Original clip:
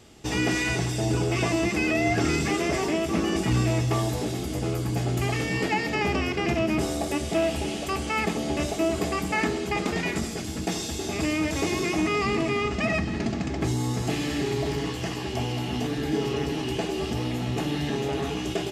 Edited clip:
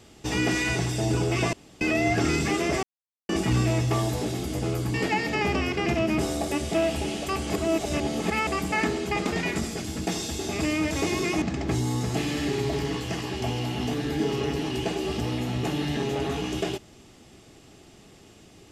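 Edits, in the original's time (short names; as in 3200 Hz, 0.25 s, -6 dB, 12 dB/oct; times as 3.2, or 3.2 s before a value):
1.53–1.81 room tone
2.83–3.29 mute
4.94–5.54 cut
8.1–9.07 reverse
12.02–13.35 cut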